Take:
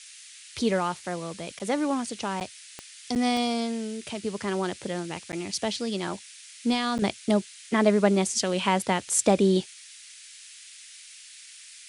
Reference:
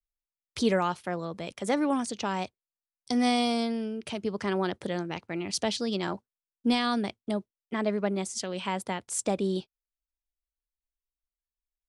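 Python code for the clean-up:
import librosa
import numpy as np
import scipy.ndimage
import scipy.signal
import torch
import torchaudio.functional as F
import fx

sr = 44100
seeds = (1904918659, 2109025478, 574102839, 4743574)

y = fx.fix_declick_ar(x, sr, threshold=10.0)
y = fx.fix_interpolate(y, sr, at_s=(1.59, 2.4, 3.15, 5.32, 6.98), length_ms=9.1)
y = fx.noise_reduce(y, sr, print_start_s=9.74, print_end_s=10.24, reduce_db=30.0)
y = fx.fix_level(y, sr, at_s=7.02, step_db=-7.5)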